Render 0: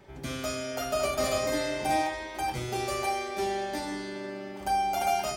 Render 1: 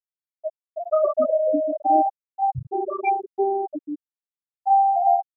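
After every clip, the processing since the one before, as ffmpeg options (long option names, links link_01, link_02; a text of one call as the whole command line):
ffmpeg -i in.wav -af "dynaudnorm=framelen=160:gausssize=5:maxgain=4.5dB,afftfilt=real='re*gte(hypot(re,im),0.316)':imag='im*gte(hypot(re,im),0.316)':win_size=1024:overlap=0.75,volume=6dB" out.wav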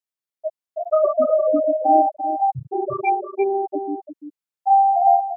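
ffmpeg -i in.wav -af "highpass=120,aecho=1:1:343:0.376,volume=2.5dB" out.wav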